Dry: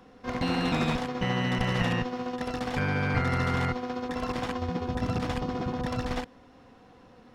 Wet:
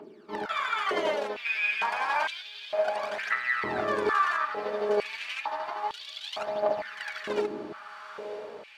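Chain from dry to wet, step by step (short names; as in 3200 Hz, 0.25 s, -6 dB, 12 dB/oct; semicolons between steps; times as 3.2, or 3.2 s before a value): wide varispeed 0.837×; phaser 0.3 Hz, delay 4.9 ms, feedback 68%; on a send: diffused feedback echo 0.962 s, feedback 57%, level -10.5 dB; on the sum: stepped high-pass 2.2 Hz 340–3400 Hz; gain -3.5 dB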